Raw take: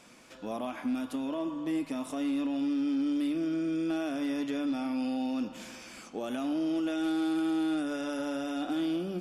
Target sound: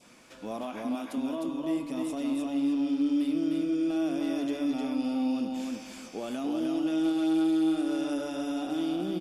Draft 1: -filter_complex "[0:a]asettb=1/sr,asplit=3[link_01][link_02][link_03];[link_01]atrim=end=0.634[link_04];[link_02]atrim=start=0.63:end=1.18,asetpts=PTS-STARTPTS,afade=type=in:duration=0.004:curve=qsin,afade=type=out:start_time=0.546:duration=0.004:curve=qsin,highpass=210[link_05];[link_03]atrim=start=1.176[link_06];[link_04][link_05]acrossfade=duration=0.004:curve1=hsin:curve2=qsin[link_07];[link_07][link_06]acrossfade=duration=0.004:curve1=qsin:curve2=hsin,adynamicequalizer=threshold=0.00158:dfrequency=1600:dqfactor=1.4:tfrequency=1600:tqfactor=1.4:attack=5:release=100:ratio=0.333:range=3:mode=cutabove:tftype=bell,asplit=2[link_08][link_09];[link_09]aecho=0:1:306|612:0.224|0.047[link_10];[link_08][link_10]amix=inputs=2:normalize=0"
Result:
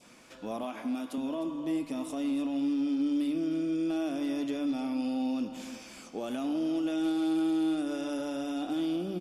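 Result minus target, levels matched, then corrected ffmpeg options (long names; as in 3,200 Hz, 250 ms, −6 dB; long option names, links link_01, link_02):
echo-to-direct −10 dB
-filter_complex "[0:a]asettb=1/sr,asplit=3[link_01][link_02][link_03];[link_01]atrim=end=0.634[link_04];[link_02]atrim=start=0.63:end=1.18,asetpts=PTS-STARTPTS,afade=type=in:duration=0.004:curve=qsin,afade=type=out:start_time=0.546:duration=0.004:curve=qsin,highpass=210[link_05];[link_03]atrim=start=1.176[link_06];[link_04][link_05]acrossfade=duration=0.004:curve1=hsin:curve2=qsin[link_07];[link_07][link_06]acrossfade=duration=0.004:curve1=qsin:curve2=hsin,adynamicequalizer=threshold=0.00158:dfrequency=1600:dqfactor=1.4:tfrequency=1600:tqfactor=1.4:attack=5:release=100:ratio=0.333:range=3:mode=cutabove:tftype=bell,asplit=2[link_08][link_09];[link_09]aecho=0:1:306|612|918:0.708|0.149|0.0312[link_10];[link_08][link_10]amix=inputs=2:normalize=0"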